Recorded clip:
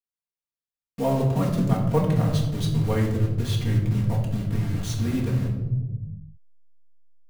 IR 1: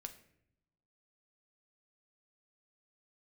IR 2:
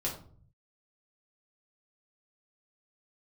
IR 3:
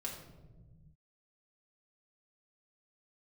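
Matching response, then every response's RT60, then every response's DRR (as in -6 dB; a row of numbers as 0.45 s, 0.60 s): 3; 0.75 s, 0.50 s, 1.2 s; 6.5 dB, -4.0 dB, -3.0 dB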